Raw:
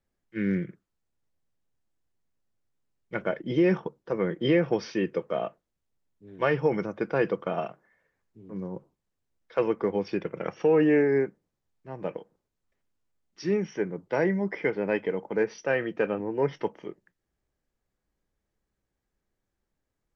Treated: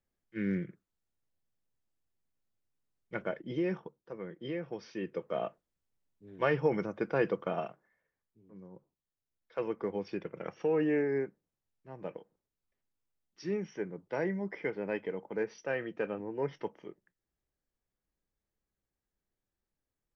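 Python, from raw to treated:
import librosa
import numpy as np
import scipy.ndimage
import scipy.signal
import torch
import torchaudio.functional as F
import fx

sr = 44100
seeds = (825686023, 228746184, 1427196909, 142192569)

y = fx.gain(x, sr, db=fx.line((3.14, -5.5), (4.2, -15.0), (4.71, -15.0), (5.43, -4.0), (7.51, -4.0), (8.6, -16.0), (9.83, -8.0)))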